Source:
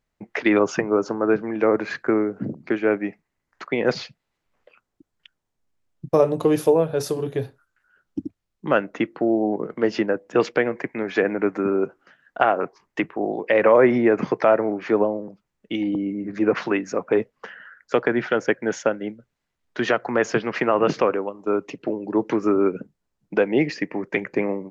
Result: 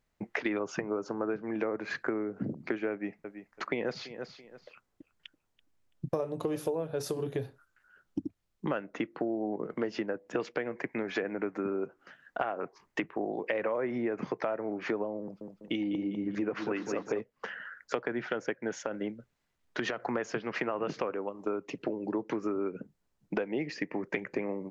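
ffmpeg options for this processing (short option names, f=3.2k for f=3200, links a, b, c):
-filter_complex "[0:a]asettb=1/sr,asplit=3[a][b][c];[a]atrim=end=2.914[d];[b]atrim=start=2.91:end=6.87,asetpts=PTS-STARTPTS,afade=t=in:d=0.004:c=qsin,afade=t=out:st=3.956:d=0.004:c=qsin,aecho=1:1:333|666:0.106|0.0254,atrim=end_sample=174636[e];[c]atrim=start=6.866[f];[d][e]acrossfade=d=0.004:c1=hsin:c2=qsin[g];[g][f]acrossfade=d=0.004:c1=qsin:c2=hsin,asettb=1/sr,asplit=3[h][i][j];[h]atrim=end=15.214[k];[i]atrim=start=15.21:end=17.21,asetpts=PTS-STARTPTS,afade=t=in:d=0.004:c=qsin,afade=t=out:st=1.996:d=0.004:c=qsin,aecho=1:1:199|398|597|796|995:0.398|0.167|0.0702|0.0295|0.0124,atrim=end_sample=88200[l];[j]atrim=start=17.206[m];[k][l]acrossfade=d=0.004:c1=hsin:c2=qsin[n];[n][m]acrossfade=d=0.004:c1=qsin:c2=hsin,asettb=1/sr,asplit=3[o][p][q];[o]atrim=end=18.784[r];[p]atrim=start=18.78:end=20.07,asetpts=PTS-STARTPTS,afade=t=in:d=0.004:c=qsin,afade=t=out:st=1.286:d=0.004:c=qsin,acompressor=threshold=-22dB:ratio=6:attack=3.2:release=140:knee=1:detection=peak[s];[q]atrim=start=20.066[t];[r][s]acrossfade=d=0.004:c1=hsin:c2=qsin[u];[u][t]acrossfade=d=0.004:c1=qsin:c2=hsin,acompressor=threshold=-30dB:ratio=6"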